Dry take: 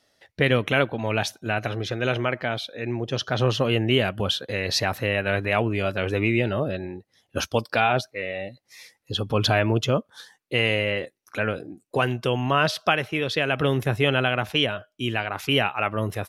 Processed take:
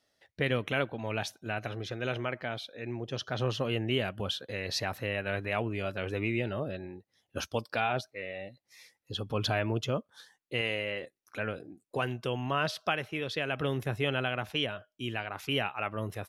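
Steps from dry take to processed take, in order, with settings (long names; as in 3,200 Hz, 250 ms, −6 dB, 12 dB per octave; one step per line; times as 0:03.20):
0:10.61–0:11.03: low-shelf EQ 150 Hz −9 dB
level −9 dB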